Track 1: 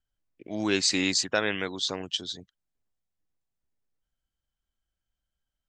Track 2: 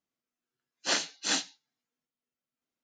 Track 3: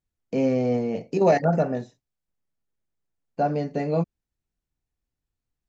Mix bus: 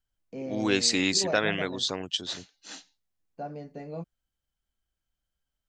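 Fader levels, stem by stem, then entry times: +0.5, −15.0, −14.0 decibels; 0.00, 1.40, 0.00 seconds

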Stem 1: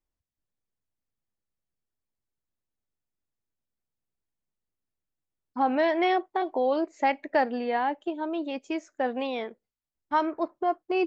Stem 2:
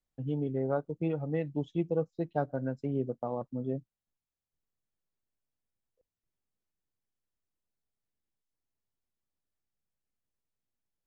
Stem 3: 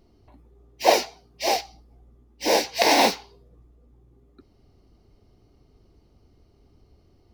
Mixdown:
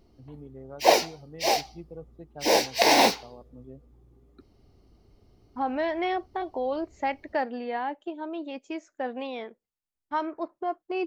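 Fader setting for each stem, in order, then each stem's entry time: −4.0, −12.5, −1.0 decibels; 0.00, 0.00, 0.00 seconds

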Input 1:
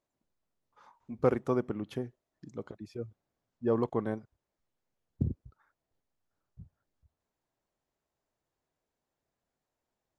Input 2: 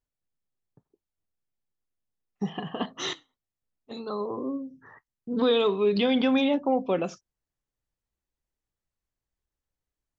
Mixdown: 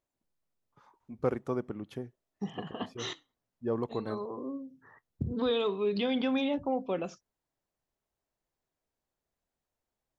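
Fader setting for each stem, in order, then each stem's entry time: −3.5, −6.5 decibels; 0.00, 0.00 seconds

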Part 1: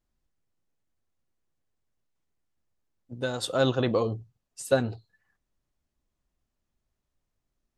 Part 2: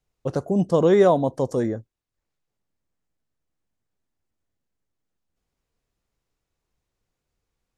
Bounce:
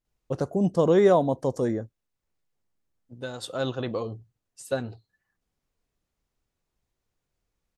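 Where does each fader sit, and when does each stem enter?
−5.0, −2.5 decibels; 0.00, 0.05 seconds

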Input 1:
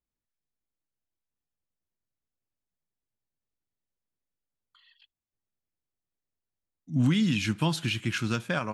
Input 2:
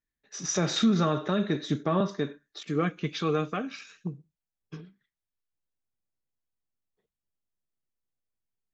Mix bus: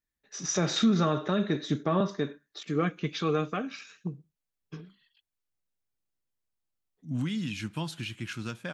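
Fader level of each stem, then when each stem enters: −7.5, −0.5 decibels; 0.15, 0.00 seconds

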